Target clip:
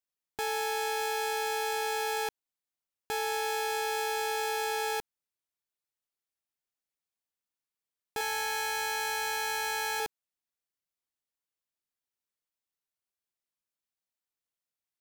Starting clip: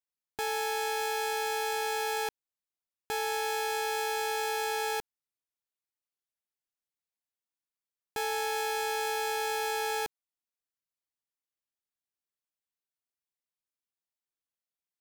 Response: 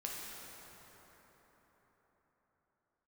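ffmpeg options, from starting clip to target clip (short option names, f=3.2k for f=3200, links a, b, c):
-filter_complex "[0:a]asettb=1/sr,asplit=3[a][b][c];[a]atrim=end=8.184[d];[b]atrim=start=8.18:end=10,asetpts=PTS-STARTPTS,afade=t=in:d=0.004:c=qsin,afade=t=out:st=1.816:d=0.004:c=qsin,asplit=2[e][f];[f]adelay=26,volume=-3dB[g];[e][g]amix=inputs=2:normalize=0,atrim=end_sample=80262[h];[c]atrim=start=9.996[i];[d][h]acrossfade=d=0.004:c1=hsin:c2=qsin[j];[j][i]acrossfade=d=0.004:c1=qsin:c2=hsin"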